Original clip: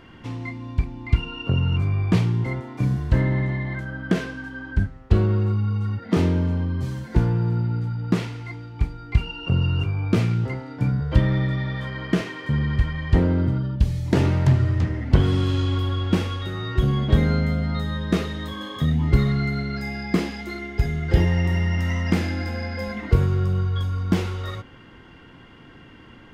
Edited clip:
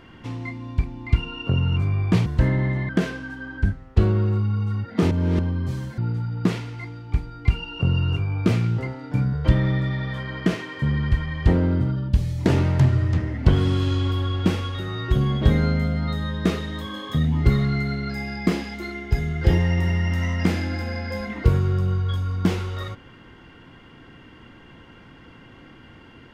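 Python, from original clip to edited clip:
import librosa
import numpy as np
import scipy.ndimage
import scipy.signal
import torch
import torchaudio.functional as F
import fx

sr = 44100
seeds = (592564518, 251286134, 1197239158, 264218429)

y = fx.edit(x, sr, fx.cut(start_s=2.26, length_s=0.73),
    fx.cut(start_s=3.62, length_s=0.41),
    fx.reverse_span(start_s=6.25, length_s=0.28),
    fx.cut(start_s=7.12, length_s=0.53), tone=tone)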